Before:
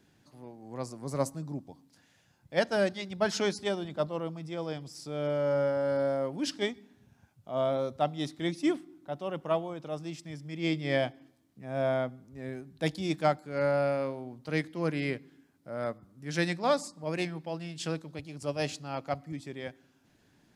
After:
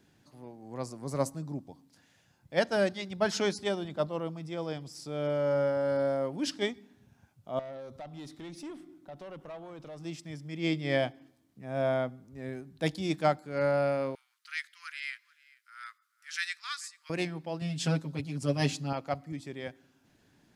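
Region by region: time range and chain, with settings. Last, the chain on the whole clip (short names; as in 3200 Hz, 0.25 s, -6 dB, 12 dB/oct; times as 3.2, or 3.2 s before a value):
7.59–10.05 compressor 3:1, threshold -38 dBFS + tube stage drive 37 dB, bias 0.2
14.15–17.1 steep high-pass 1300 Hz 48 dB/oct + echo 0.436 s -23 dB
17.61–18.93 bell 200 Hz +7.5 dB 0.83 oct + comb 7.5 ms, depth 97%
whole clip: dry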